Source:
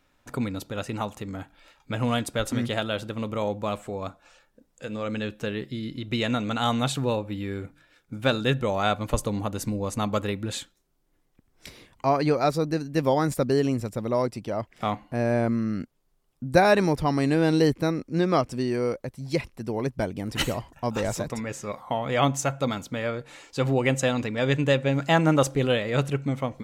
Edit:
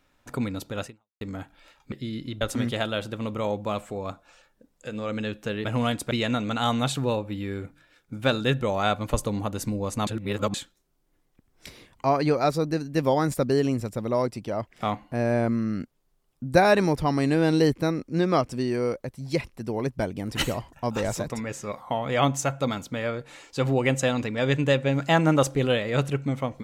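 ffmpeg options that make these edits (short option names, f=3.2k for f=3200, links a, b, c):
-filter_complex "[0:a]asplit=8[a][b][c][d][e][f][g][h];[a]atrim=end=1.21,asetpts=PTS-STARTPTS,afade=t=out:st=0.86:d=0.35:c=exp[i];[b]atrim=start=1.21:end=1.922,asetpts=PTS-STARTPTS,afade=t=in:d=0.004:c=hsin[j];[c]atrim=start=5.618:end=6.112[k];[d]atrim=start=2.378:end=5.622[l];[e]atrim=start=1.918:end=2.382[m];[f]atrim=start=6.108:end=10.072[n];[g]atrim=start=10.068:end=10.542,asetpts=PTS-STARTPTS,areverse[o];[h]atrim=start=10.538[p];[i][j]concat=n=2:v=0:a=1[q];[q][k]acrossfade=d=0.004:c1=hsin:c2=hsin[r];[r][l]acrossfade=d=0.004:c1=hsin:c2=hsin[s];[s][m]acrossfade=d=0.004:c1=hsin:c2=hsin[t];[t][n]acrossfade=d=0.004:c1=hsin:c2=hsin[u];[u][o]acrossfade=d=0.004:c1=hsin:c2=hsin[v];[v][p]acrossfade=d=0.004:c1=hsin:c2=hsin"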